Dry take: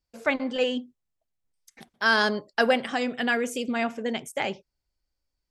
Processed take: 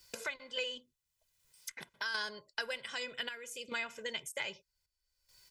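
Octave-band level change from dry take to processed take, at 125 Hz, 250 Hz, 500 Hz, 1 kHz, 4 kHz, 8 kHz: no reading, -26.0 dB, -17.5 dB, -17.5 dB, -7.0 dB, -4.0 dB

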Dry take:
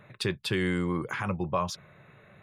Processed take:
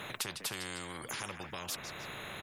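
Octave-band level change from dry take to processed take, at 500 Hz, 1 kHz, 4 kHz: -14.0 dB, -9.5 dB, -2.5 dB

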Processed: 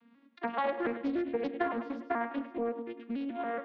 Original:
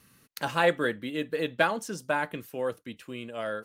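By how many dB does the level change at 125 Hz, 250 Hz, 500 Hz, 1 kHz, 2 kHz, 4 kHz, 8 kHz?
-16.0 dB, +1.0 dB, -5.0 dB, -3.5 dB, -10.5 dB, -15.0 dB, under -30 dB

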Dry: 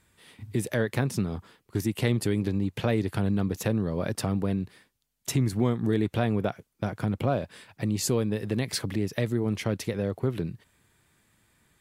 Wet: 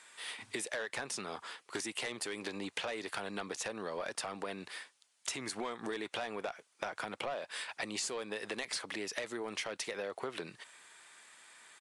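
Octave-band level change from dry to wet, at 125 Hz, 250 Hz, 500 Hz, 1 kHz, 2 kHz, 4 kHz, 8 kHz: -29.0 dB, -18.0 dB, -10.0 dB, -4.5 dB, -2.0 dB, -2.0 dB, -4.0 dB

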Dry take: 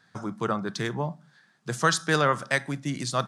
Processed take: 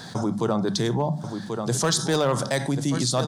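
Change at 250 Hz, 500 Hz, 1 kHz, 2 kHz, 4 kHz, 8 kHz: +6.5 dB, +4.5 dB, -1.0 dB, -5.5 dB, +4.5 dB, +6.5 dB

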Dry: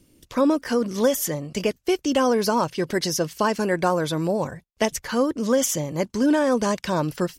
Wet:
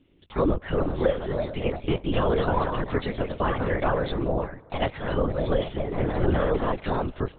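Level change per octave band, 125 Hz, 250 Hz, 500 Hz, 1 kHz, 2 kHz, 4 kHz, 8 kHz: +3.0 dB, -6.0 dB, -3.0 dB, -3.0 dB, -3.5 dB, -7.5 dB, under -40 dB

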